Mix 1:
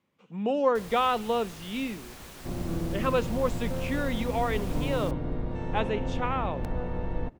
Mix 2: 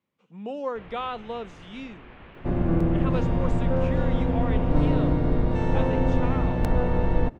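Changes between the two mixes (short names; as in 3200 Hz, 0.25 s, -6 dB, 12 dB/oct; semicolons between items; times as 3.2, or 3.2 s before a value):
speech -6.5 dB; first sound: add steep low-pass 2900 Hz 36 dB/oct; second sound +9.0 dB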